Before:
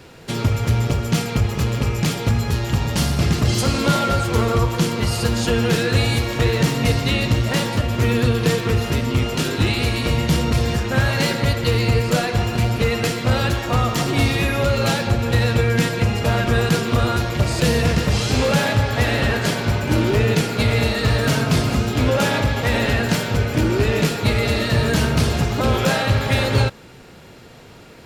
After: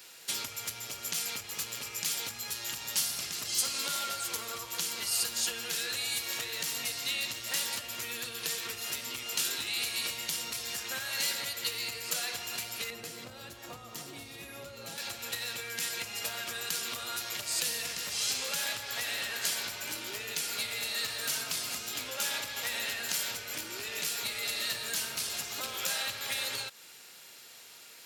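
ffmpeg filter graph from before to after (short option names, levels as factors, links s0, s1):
-filter_complex "[0:a]asettb=1/sr,asplit=3[s0][s1][s2];[s0]atrim=end=12.904[s3];[s1]atrim=start=12.9:end=14.98,asetpts=PTS-STARTPTS,afade=t=in:d=0.004:c=qsin,afade=t=out:st=2.076:d=0.004:c=qsin,tiltshelf=f=780:g=9,acompressor=mode=upward:threshold=0.2:ratio=2.5:attack=3.2:release=140:knee=2.83:detection=peak[s4];[s2]atrim=start=14.976[s5];[s3][s4]acrossfade=d=0.004:c1=hsin:c2=qsin[s6];[s6][s5]acrossfade=d=0.004:c1=qsin:c2=hsin,acompressor=threshold=0.0891:ratio=6,aderivative,volume=1.58"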